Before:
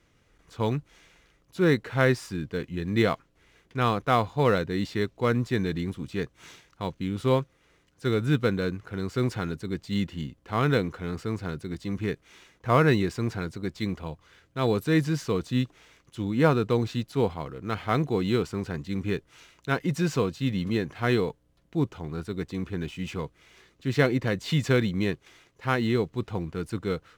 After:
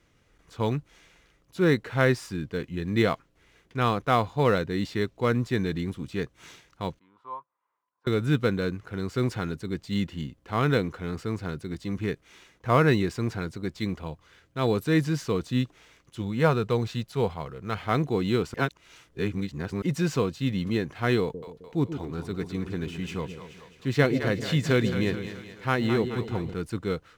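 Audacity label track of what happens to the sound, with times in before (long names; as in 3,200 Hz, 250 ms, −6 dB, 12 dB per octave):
6.990000	8.070000	resonant band-pass 1,000 Hz, Q 11
16.210000	17.830000	parametric band 290 Hz −10.5 dB 0.34 octaves
18.540000	19.820000	reverse
21.210000	26.540000	echo with a time of its own for lows and highs split 510 Hz, lows 131 ms, highs 214 ms, level −9 dB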